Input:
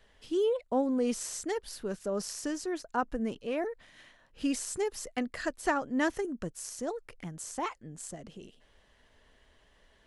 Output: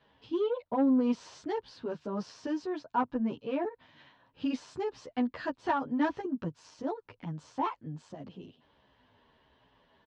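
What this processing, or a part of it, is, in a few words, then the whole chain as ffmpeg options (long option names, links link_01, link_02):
barber-pole flanger into a guitar amplifier: -filter_complex "[0:a]asplit=2[link_01][link_02];[link_02]adelay=10.4,afreqshift=-1.5[link_03];[link_01][link_03]amix=inputs=2:normalize=1,asoftclip=type=tanh:threshold=-25dB,highpass=79,equalizer=frequency=110:width_type=q:width=4:gain=7,equalizer=frequency=150:width_type=q:width=4:gain=5,equalizer=frequency=270:width_type=q:width=4:gain=7,equalizer=frequency=940:width_type=q:width=4:gain=9,equalizer=frequency=2000:width_type=q:width=4:gain=-5,lowpass=frequency=4300:width=0.5412,lowpass=frequency=4300:width=1.3066,volume=1.5dB"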